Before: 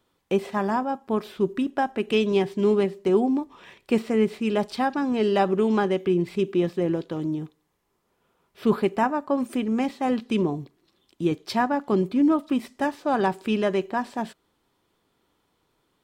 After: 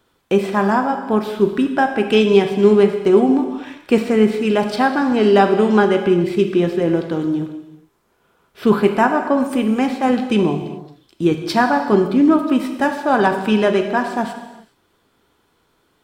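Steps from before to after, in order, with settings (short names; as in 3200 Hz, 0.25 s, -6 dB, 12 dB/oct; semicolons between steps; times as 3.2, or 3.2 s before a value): bell 1500 Hz +6 dB 0.22 oct; non-linear reverb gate 0.44 s falling, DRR 5.5 dB; gain +7 dB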